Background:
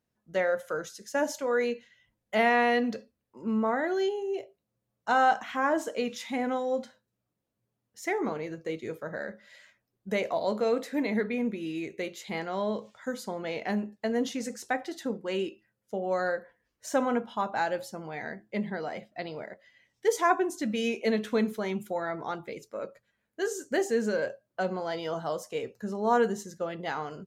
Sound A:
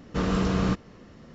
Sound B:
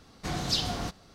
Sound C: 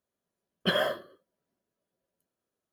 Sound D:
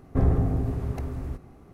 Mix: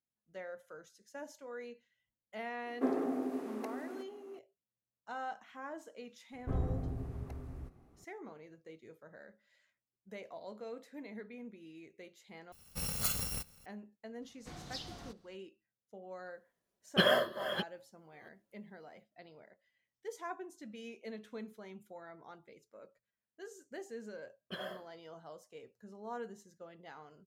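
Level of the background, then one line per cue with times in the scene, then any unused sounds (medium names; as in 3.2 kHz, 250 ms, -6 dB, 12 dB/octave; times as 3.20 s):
background -18.5 dB
2.66 s: add D -3 dB + Chebyshev high-pass 240 Hz, order 5
6.32 s: add D -13 dB
12.52 s: replace with B -5.5 dB + bit-reversed sample order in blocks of 128 samples
14.22 s: add B -16.5 dB
16.31 s: add C -0.5 dB + chunks repeated in reverse 494 ms, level -10 dB
23.85 s: add C -17 dB
not used: A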